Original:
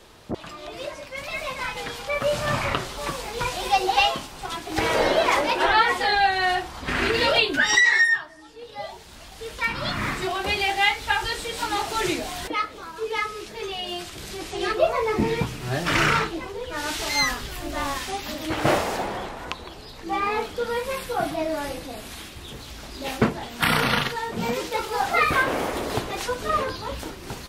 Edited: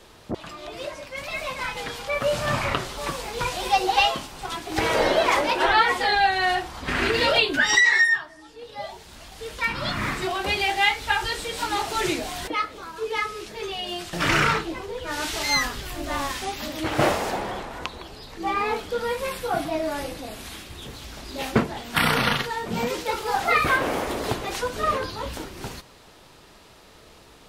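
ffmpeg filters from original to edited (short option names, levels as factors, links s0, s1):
-filter_complex "[0:a]asplit=2[s0][s1];[s0]atrim=end=14.132[s2];[s1]atrim=start=15.788[s3];[s2][s3]acrossfade=d=0.004:c1=hsin:c2=hsin"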